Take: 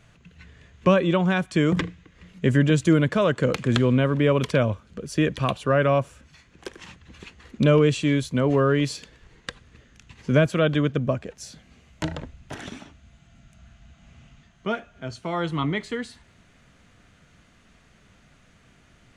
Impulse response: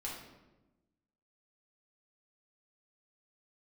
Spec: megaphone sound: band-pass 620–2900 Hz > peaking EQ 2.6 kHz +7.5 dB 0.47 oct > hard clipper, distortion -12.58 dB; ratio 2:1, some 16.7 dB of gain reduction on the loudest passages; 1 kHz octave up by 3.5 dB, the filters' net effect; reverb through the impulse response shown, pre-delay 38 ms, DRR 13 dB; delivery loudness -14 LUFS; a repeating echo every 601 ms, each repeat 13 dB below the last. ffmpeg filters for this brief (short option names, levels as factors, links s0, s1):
-filter_complex "[0:a]equalizer=f=1000:t=o:g=5,acompressor=threshold=0.00631:ratio=2,aecho=1:1:601|1202|1803:0.224|0.0493|0.0108,asplit=2[s0][s1];[1:a]atrim=start_sample=2205,adelay=38[s2];[s1][s2]afir=irnorm=-1:irlink=0,volume=0.211[s3];[s0][s3]amix=inputs=2:normalize=0,highpass=620,lowpass=2900,equalizer=f=2600:t=o:w=0.47:g=7.5,asoftclip=type=hard:threshold=0.02,volume=29.9"